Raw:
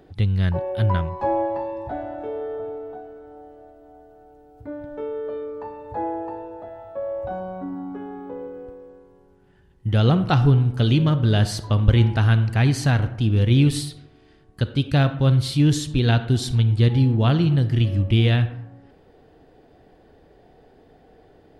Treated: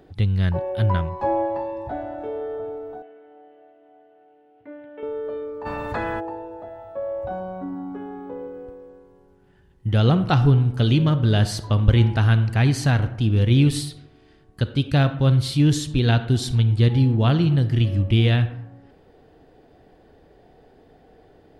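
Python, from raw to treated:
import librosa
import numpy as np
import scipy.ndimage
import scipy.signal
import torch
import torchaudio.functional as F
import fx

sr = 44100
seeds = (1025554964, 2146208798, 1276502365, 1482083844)

y = fx.cabinet(x, sr, low_hz=380.0, low_slope=12, high_hz=3100.0, hz=(400.0, 580.0, 860.0, 1300.0, 2000.0, 2900.0), db=(-5, -4, -6, -8, 5, 8), at=(3.02, 5.03))
y = fx.spectral_comp(y, sr, ratio=4.0, at=(5.65, 6.19), fade=0.02)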